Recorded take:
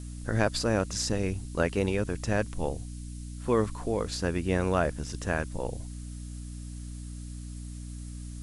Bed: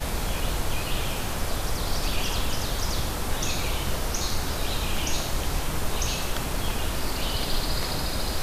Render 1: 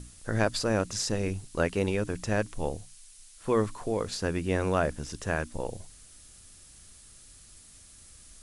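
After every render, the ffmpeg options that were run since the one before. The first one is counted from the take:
-af "bandreject=f=60:t=h:w=6,bandreject=f=120:t=h:w=6,bandreject=f=180:t=h:w=6,bandreject=f=240:t=h:w=6,bandreject=f=300:t=h:w=6"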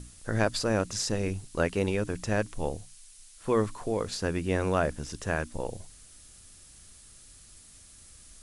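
-af anull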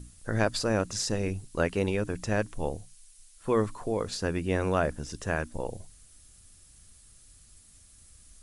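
-af "afftdn=nr=6:nf=-53"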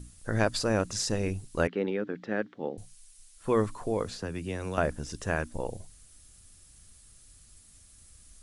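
-filter_complex "[0:a]asettb=1/sr,asplit=3[a][b][c];[a]atrim=end=1.674[d];[b]atrim=start=1.67:end=2.78,asetpts=PTS-STARTPTS,afade=t=in:d=0.004:c=qsin,afade=t=out:st=1.106:d=0.004:c=qsin,highpass=f=190:w=0.5412,highpass=f=190:w=1.3066,equalizer=f=650:t=q:w=4:g=-6,equalizer=f=1k:t=q:w=4:g=-9,equalizer=f=2.6k:t=q:w=4:g=-9,lowpass=f=3.3k:w=0.5412,lowpass=f=3.3k:w=1.3066[e];[c]atrim=start=2.776[f];[d][e]acrossfade=d=0.004:c1=hsin:c2=qsin[g];[g][f]acrossfade=d=0.004:c1=qsin:c2=hsin,asettb=1/sr,asplit=3[h][i][j];[h]atrim=end=4.044[k];[i]atrim=start=4.04:end=4.78,asetpts=PTS-STARTPTS,afade=t=in:d=0.004:c=qsin,afade=t=out:st=0.736:d=0.004:c=qsin,acrossover=split=99|210|2900[l][m][n][o];[l]acompressor=threshold=-45dB:ratio=3[p];[m]acompressor=threshold=-40dB:ratio=3[q];[n]acompressor=threshold=-37dB:ratio=3[r];[o]acompressor=threshold=-45dB:ratio=3[s];[p][q][r][s]amix=inputs=4:normalize=0[t];[j]atrim=start=4.776[u];[k][t]acrossfade=d=0.004:c1=hsin:c2=qsin[v];[v][u]acrossfade=d=0.004:c1=qsin:c2=hsin"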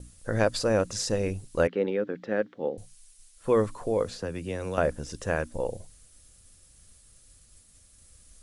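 -af "agate=range=-33dB:threshold=-53dB:ratio=3:detection=peak,equalizer=f=520:t=o:w=0.35:g=7.5"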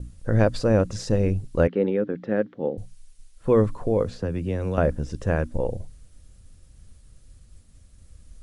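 -af "lowpass=f=3.4k:p=1,lowshelf=f=320:g=11"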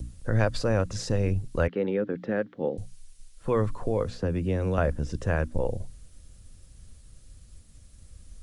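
-filter_complex "[0:a]acrossover=split=100|730|2700[a][b][c][d];[b]alimiter=limit=-19.5dB:level=0:latency=1:release=253[e];[d]acompressor=mode=upward:threshold=-57dB:ratio=2.5[f];[a][e][c][f]amix=inputs=4:normalize=0"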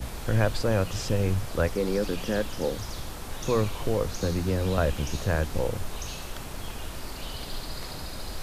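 -filter_complex "[1:a]volume=-9dB[a];[0:a][a]amix=inputs=2:normalize=0"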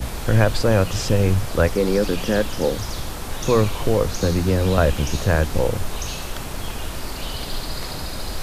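-af "volume=7.5dB,alimiter=limit=-2dB:level=0:latency=1"

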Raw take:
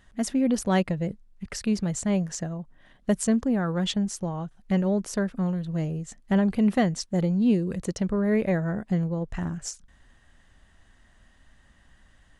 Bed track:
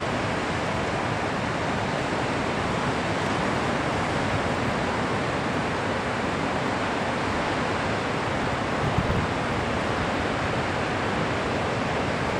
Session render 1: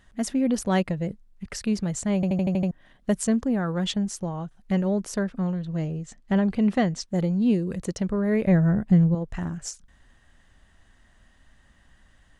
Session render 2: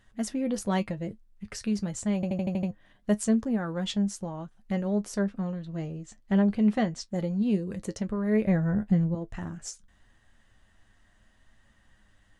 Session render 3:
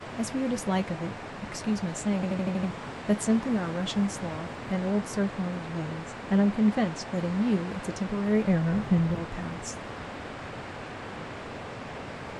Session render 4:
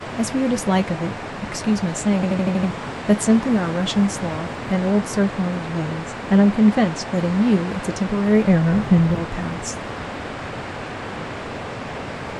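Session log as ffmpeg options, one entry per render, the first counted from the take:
-filter_complex "[0:a]asettb=1/sr,asplit=3[a][b][c];[a]atrim=end=5.234[d];[b]atrim=start=5.23:end=7.08,asetpts=PTS-STARTPTS,afade=t=in:d=0.004:c=qsin,afade=t=out:st=1.846:d=0.004:c=qsin,lowpass=7.2k[e];[c]atrim=start=7.076[f];[d][e]acrossfade=d=0.004:c1=hsin:c2=qsin[g];[g][f]acrossfade=d=0.004:c1=qsin:c2=hsin,asettb=1/sr,asplit=3[h][i][j];[h]atrim=end=8.474[k];[i]atrim=start=8.47:end=9.15,asetpts=PTS-STARTPTS,afade=t=in:d=0.004:c=qsin,afade=t=out:st=0.676:d=0.004:c=qsin,bass=f=250:g=10,treble=f=4k:g=-3[l];[j]atrim=start=9.146[m];[k][l]acrossfade=d=0.004:c1=hsin:c2=qsin[n];[n][m]acrossfade=d=0.004:c1=qsin:c2=hsin,asplit=8[o][p][q][r][s][t][u][v];[o]atrim=end=2.232[w];[p]atrim=start=2.148:end=2.232[x];[q]atrim=start=2.148:end=2.232[y];[r]atrim=start=2.148:end=2.232[z];[s]atrim=start=2.148:end=2.232[aa];[t]atrim=start=2.148:end=2.232[ab];[u]atrim=start=2.148:end=2.232[ac];[v]atrim=start=2.708[ad];[w][x]acrossfade=d=0.004:c1=hsin:c2=hsin[ae];[ae][y]acrossfade=d=0.004:c1=hsin:c2=hsin[af];[af][z]acrossfade=d=0.004:c1=hsin:c2=hsin[ag];[ag][aa]acrossfade=d=0.004:c1=hsin:c2=hsin[ah];[ah][ab]acrossfade=d=0.004:c1=hsin:c2=hsin[ai];[ai][ac]acrossfade=d=0.004:c1=hsin:c2=hsin[aj];[aj][ad]acrossfade=d=0.004:c1=hsin:c2=hsin"
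-af "flanger=delay=8.9:depth=1.1:regen=51:speed=0.86:shape=triangular"
-filter_complex "[1:a]volume=-13dB[a];[0:a][a]amix=inputs=2:normalize=0"
-af "volume=8.5dB"

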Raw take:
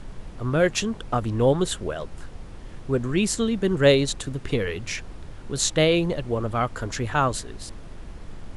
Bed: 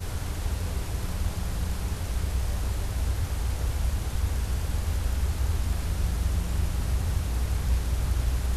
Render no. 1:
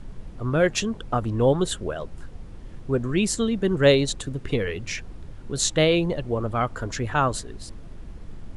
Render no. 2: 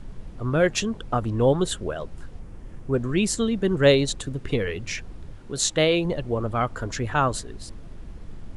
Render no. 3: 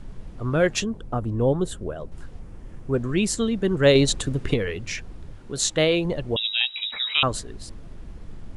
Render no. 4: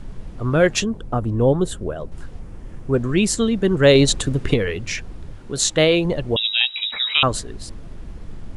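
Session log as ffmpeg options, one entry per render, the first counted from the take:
-af "afftdn=nr=6:nf=-41"
-filter_complex "[0:a]asettb=1/sr,asplit=3[a][b][c];[a]atrim=end=2.394[d];[b]atrim=start=2.39:end=2.94,asetpts=PTS-STARTPTS,afade=t=in:d=0.004:c=qsin,afade=t=out:st=0.546:d=0.004:c=qsin,equalizer=f=3.9k:w=1.5:g=-6.5[e];[c]atrim=start=2.936[f];[d][e]acrossfade=d=0.004:c1=hsin:c2=qsin[g];[g][f]acrossfade=d=0.004:c1=qsin:c2=hsin,asettb=1/sr,asplit=3[h][i][j];[h]atrim=end=5.384[k];[i]atrim=start=5.38:end=6.05,asetpts=PTS-STARTPTS,afade=t=in:d=0.004:c=qsin,afade=t=out:st=0.666:d=0.004:c=qsin,lowshelf=f=160:g=-7[l];[j]atrim=start=6.046[m];[k][l]acrossfade=d=0.004:c1=hsin:c2=qsin[n];[n][m]acrossfade=d=0.004:c1=qsin:c2=hsin"
-filter_complex "[0:a]asettb=1/sr,asplit=3[a][b][c];[a]atrim=end=0.844[d];[b]atrim=start=0.84:end=2.12,asetpts=PTS-STARTPTS,afade=t=in:d=0.004:c=qsin,afade=t=out:st=1.276:d=0.004:c=qsin,equalizer=f=3.3k:w=0.3:g=-9.5[e];[c]atrim=start=2.116[f];[d][e]acrossfade=d=0.004:c1=hsin:c2=qsin[g];[g][f]acrossfade=d=0.004:c1=qsin:c2=hsin,asettb=1/sr,asplit=3[h][i][j];[h]atrim=end=3.954[k];[i]atrim=start=3.95:end=4.54,asetpts=PTS-STARTPTS,afade=t=in:d=0.004:c=qsin,afade=t=out:st=0.586:d=0.004:c=qsin,acontrast=22[l];[j]atrim=start=4.536[m];[k][l]acrossfade=d=0.004:c1=hsin:c2=qsin[n];[n][m]acrossfade=d=0.004:c1=qsin:c2=hsin,asettb=1/sr,asplit=3[o][p][q];[o]atrim=end=6.364[r];[p]atrim=start=6.36:end=7.23,asetpts=PTS-STARTPTS,afade=t=in:d=0.004:c=qsin,afade=t=out:st=0.866:d=0.004:c=qsin,lowpass=f=3.3k:t=q:w=0.5098,lowpass=f=3.3k:t=q:w=0.6013,lowpass=f=3.3k:t=q:w=0.9,lowpass=f=3.3k:t=q:w=2.563,afreqshift=-3900[s];[q]atrim=start=7.226[t];[r][s]acrossfade=d=0.004:c1=hsin:c2=qsin[u];[u][t]acrossfade=d=0.004:c1=qsin:c2=hsin"
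-af "volume=4.5dB,alimiter=limit=-3dB:level=0:latency=1"

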